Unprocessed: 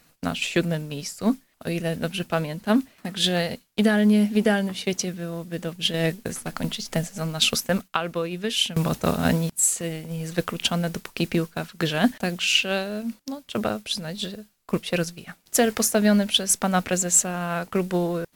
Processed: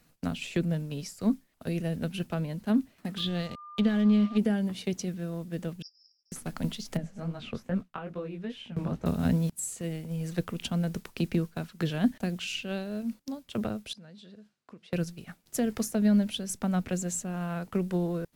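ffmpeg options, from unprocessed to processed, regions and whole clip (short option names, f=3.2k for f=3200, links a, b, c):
-filter_complex "[0:a]asettb=1/sr,asplit=3[a][b][c];[a]atrim=end=3.184[d];[b]atrim=start=3.18:end=4.38,asetpts=PTS-STARTPTS,afade=t=in:d=0.004:c=qsin,afade=t=out:st=1.196:d=0.004:c=qsin,lowpass=f=3.7k:t=q:w=2.3,aeval=exprs='sgn(val(0))*max(abs(val(0))-0.0178,0)':c=same,aeval=exprs='val(0)+0.0178*sin(2*PI*1200*n/s)':c=same[e];[c]atrim=start=4.376[f];[d][e]acrossfade=d=0.004:c1=hsin:c2=qsin[g];[g][f]acrossfade=d=0.004:c1=qsin:c2=hsin,asettb=1/sr,asplit=3[h][i][j];[h]atrim=end=5.824[k];[i]atrim=start=5.82:end=6.32,asetpts=PTS-STARTPTS,afade=t=in:d=0.004:c=qsin,afade=t=out:st=0.496:d=0.004:c=qsin,acrusher=bits=7:mix=0:aa=0.5,asuperpass=centerf=5200:order=12:qfactor=6.2[l];[j]atrim=start=6.316[m];[k][l]acrossfade=d=0.004:c1=hsin:c2=qsin[n];[n][m]acrossfade=d=0.004:c1=qsin:c2=hsin,asettb=1/sr,asplit=3[o][p][q];[o]atrim=end=6.974[r];[p]atrim=start=6.97:end=9.06,asetpts=PTS-STARTPTS,afade=t=in:d=0.004:c=qsin,afade=t=out:st=2.086:d=0.004:c=qsin,aemphasis=mode=reproduction:type=75kf,acrossover=split=2600[s][t];[t]acompressor=threshold=-42dB:ratio=4:attack=1:release=60[u];[s][u]amix=inputs=2:normalize=0,flanger=delay=15.5:depth=7:speed=2.4[v];[q]atrim=start=9.056[w];[r][v]acrossfade=d=0.004:c1=hsin:c2=qsin[x];[x][w]acrossfade=d=0.004:c1=qsin:c2=hsin,asettb=1/sr,asplit=3[y][z][aa];[y]atrim=end=13.934[ab];[z]atrim=start=13.93:end=14.93,asetpts=PTS-STARTPTS,afade=t=in:d=0.004:c=qsin,afade=t=out:st=0.996:d=0.004:c=qsin,equalizer=f=1.5k:t=o:w=0.29:g=4,acompressor=threshold=-42dB:ratio=6:attack=3.2:release=140:knee=1:detection=peak,highpass=130,lowpass=5.7k[ac];[aa]atrim=start=14.926[ad];[ab][ac]acrossfade=d=0.004:c1=hsin:c2=qsin[ae];[ae][ad]acrossfade=d=0.004:c1=qsin:c2=hsin,lowshelf=f=400:g=7.5,acrossover=split=330[af][ag];[ag]acompressor=threshold=-27dB:ratio=2.5[ah];[af][ah]amix=inputs=2:normalize=0,volume=-8.5dB"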